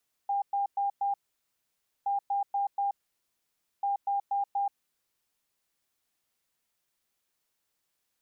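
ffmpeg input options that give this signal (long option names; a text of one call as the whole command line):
ffmpeg -f lavfi -i "aevalsrc='0.0531*sin(2*PI*801*t)*clip(min(mod(mod(t,1.77),0.24),0.13-mod(mod(t,1.77),0.24))/0.005,0,1)*lt(mod(t,1.77),0.96)':duration=5.31:sample_rate=44100" out.wav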